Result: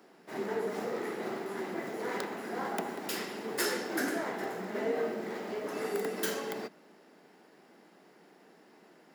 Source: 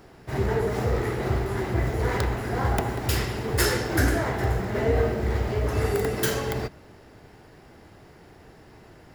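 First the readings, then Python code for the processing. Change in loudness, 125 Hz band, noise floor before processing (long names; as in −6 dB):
−9.5 dB, −26.0 dB, −51 dBFS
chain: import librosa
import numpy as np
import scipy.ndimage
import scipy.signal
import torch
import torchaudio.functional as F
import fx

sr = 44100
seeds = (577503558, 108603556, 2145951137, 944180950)

y = scipy.signal.sosfilt(scipy.signal.butter(8, 180.0, 'highpass', fs=sr, output='sos'), x)
y = y * librosa.db_to_amplitude(-7.5)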